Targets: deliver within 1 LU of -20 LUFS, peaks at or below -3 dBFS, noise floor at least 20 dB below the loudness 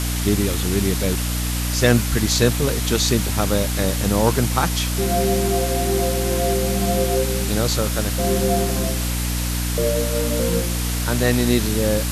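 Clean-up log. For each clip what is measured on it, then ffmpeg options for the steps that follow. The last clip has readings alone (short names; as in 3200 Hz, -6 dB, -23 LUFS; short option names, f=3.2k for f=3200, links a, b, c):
hum 60 Hz; harmonics up to 300 Hz; hum level -21 dBFS; noise floor -23 dBFS; noise floor target -40 dBFS; loudness -20.0 LUFS; peak -2.0 dBFS; loudness target -20.0 LUFS
-> -af "bandreject=f=60:t=h:w=6,bandreject=f=120:t=h:w=6,bandreject=f=180:t=h:w=6,bandreject=f=240:t=h:w=6,bandreject=f=300:t=h:w=6"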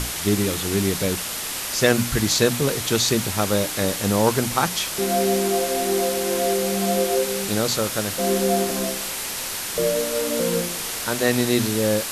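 hum none; noise floor -29 dBFS; noise floor target -42 dBFS
-> -af "afftdn=nr=13:nf=-29"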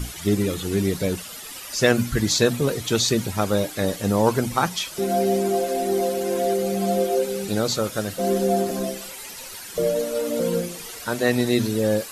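noise floor -38 dBFS; noise floor target -43 dBFS
-> -af "afftdn=nr=6:nf=-38"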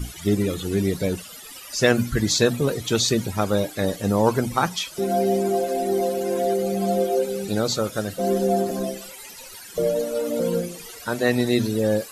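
noise floor -41 dBFS; noise floor target -43 dBFS
-> -af "afftdn=nr=6:nf=-41"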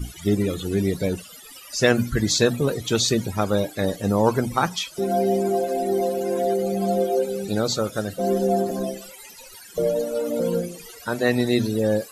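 noise floor -44 dBFS; loudness -23.0 LUFS; peak -4.0 dBFS; loudness target -20.0 LUFS
-> -af "volume=3dB,alimiter=limit=-3dB:level=0:latency=1"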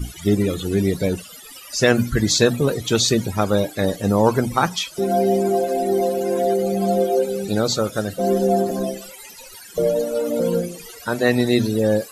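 loudness -20.0 LUFS; peak -3.0 dBFS; noise floor -41 dBFS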